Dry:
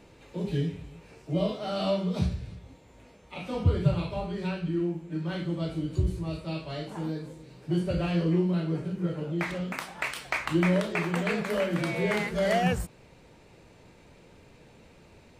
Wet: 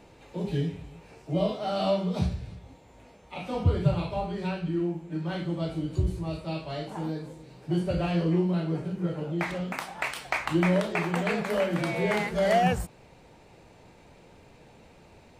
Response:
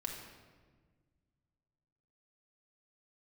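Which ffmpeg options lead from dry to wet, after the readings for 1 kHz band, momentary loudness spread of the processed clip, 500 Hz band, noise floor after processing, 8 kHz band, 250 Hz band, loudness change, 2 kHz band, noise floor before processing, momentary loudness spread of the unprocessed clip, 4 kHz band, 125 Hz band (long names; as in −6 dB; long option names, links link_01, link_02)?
+4.0 dB, 12 LU, +1.5 dB, −55 dBFS, 0.0 dB, 0.0 dB, +0.5 dB, 0.0 dB, −55 dBFS, 12 LU, 0.0 dB, 0.0 dB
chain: -af "equalizer=frequency=780:width=2.4:gain=5.5"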